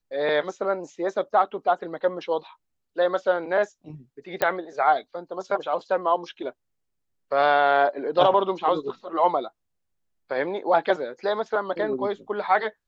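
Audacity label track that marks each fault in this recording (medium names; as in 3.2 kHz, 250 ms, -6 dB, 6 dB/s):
4.420000	4.420000	pop -9 dBFS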